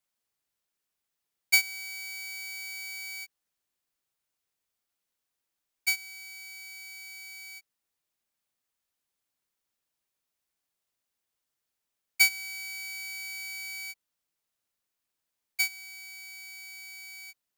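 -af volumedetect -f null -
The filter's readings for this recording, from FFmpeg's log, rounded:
mean_volume: -38.3 dB
max_volume: -11.2 dB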